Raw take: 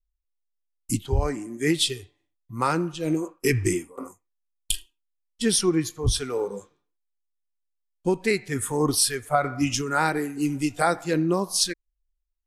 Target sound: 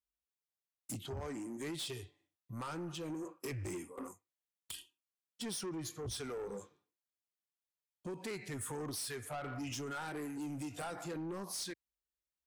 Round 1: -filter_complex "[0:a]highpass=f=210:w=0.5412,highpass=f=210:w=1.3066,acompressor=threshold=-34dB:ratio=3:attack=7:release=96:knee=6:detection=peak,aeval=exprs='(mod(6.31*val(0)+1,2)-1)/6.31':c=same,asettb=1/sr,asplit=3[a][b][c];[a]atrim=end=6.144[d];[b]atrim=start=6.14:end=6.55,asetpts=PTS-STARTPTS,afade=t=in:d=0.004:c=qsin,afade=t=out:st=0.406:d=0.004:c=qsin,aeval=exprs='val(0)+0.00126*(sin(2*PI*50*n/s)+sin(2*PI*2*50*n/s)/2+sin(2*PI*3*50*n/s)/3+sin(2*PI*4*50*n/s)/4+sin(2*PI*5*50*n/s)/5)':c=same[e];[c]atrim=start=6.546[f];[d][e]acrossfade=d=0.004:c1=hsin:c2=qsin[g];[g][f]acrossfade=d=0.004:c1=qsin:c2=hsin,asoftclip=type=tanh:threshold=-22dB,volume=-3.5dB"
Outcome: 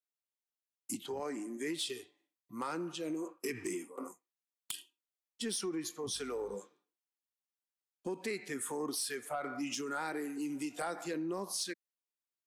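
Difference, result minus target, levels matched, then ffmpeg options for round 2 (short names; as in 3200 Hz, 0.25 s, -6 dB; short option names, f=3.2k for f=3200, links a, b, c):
125 Hz band -11.5 dB; soft clip: distortion -14 dB
-filter_complex "[0:a]highpass=f=77:w=0.5412,highpass=f=77:w=1.3066,acompressor=threshold=-34dB:ratio=3:attack=7:release=96:knee=6:detection=peak,aeval=exprs='(mod(6.31*val(0)+1,2)-1)/6.31':c=same,asettb=1/sr,asplit=3[a][b][c];[a]atrim=end=6.144[d];[b]atrim=start=6.14:end=6.55,asetpts=PTS-STARTPTS,afade=t=in:d=0.004:c=qsin,afade=t=out:st=0.406:d=0.004:c=qsin,aeval=exprs='val(0)+0.00126*(sin(2*PI*50*n/s)+sin(2*PI*2*50*n/s)/2+sin(2*PI*3*50*n/s)/3+sin(2*PI*4*50*n/s)/4+sin(2*PI*5*50*n/s)/5)':c=same[e];[c]atrim=start=6.546[f];[d][e]acrossfade=d=0.004:c1=hsin:c2=qsin[g];[g][f]acrossfade=d=0.004:c1=qsin:c2=hsin,asoftclip=type=tanh:threshold=-33.5dB,volume=-3.5dB"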